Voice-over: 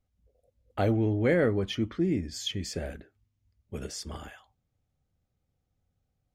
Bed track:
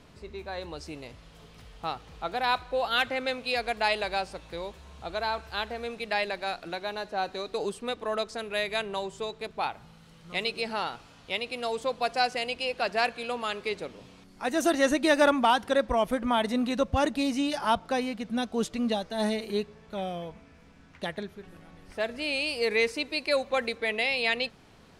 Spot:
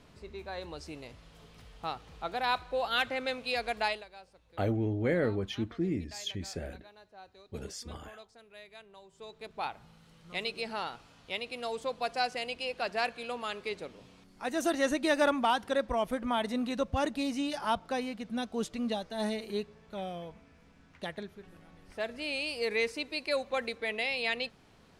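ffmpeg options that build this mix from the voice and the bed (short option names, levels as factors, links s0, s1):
-filter_complex "[0:a]adelay=3800,volume=0.596[s0];[1:a]volume=4.47,afade=t=out:st=3.83:d=0.22:silence=0.125893,afade=t=in:st=9.08:d=0.58:silence=0.149624[s1];[s0][s1]amix=inputs=2:normalize=0"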